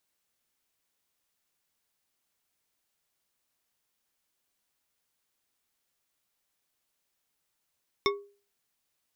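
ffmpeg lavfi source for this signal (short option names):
-f lavfi -i "aevalsrc='0.0794*pow(10,-3*t/0.39)*sin(2*PI*404*t)+0.0708*pow(10,-3*t/0.192)*sin(2*PI*1113.8*t)+0.0631*pow(10,-3*t/0.12)*sin(2*PI*2183.2*t)+0.0562*pow(10,-3*t/0.084)*sin(2*PI*3608.9*t)+0.0501*pow(10,-3*t/0.064)*sin(2*PI*5389.4*t)':d=0.89:s=44100"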